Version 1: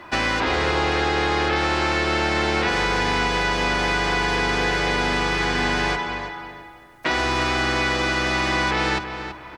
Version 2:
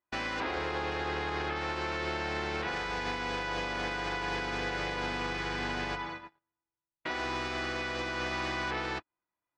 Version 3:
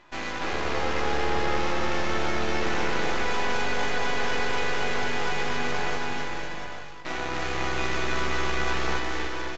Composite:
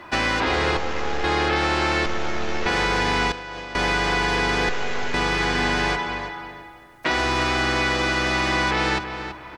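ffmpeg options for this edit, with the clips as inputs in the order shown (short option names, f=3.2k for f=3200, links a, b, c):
-filter_complex "[2:a]asplit=3[a][b][c];[0:a]asplit=5[d][e][f][g][h];[d]atrim=end=0.772[i];[a]atrim=start=0.768:end=1.242[j];[e]atrim=start=1.238:end=2.062[k];[b]atrim=start=2.058:end=2.662[l];[f]atrim=start=2.658:end=3.322[m];[1:a]atrim=start=3.318:end=3.752[n];[g]atrim=start=3.748:end=4.692[o];[c]atrim=start=4.688:end=5.142[p];[h]atrim=start=5.138[q];[i][j]acrossfade=d=0.004:c1=hsin:c2=hsin[r];[r][k]acrossfade=d=0.004:c1=hsin:c2=hsin[s];[s][l]acrossfade=d=0.004:c1=hsin:c2=hsin[t];[t][m]acrossfade=d=0.004:c1=hsin:c2=hsin[u];[u][n]acrossfade=d=0.004:c1=hsin:c2=hsin[v];[v][o]acrossfade=d=0.004:c1=hsin:c2=hsin[w];[w][p]acrossfade=d=0.004:c1=hsin:c2=hsin[x];[x][q]acrossfade=d=0.004:c1=hsin:c2=hsin"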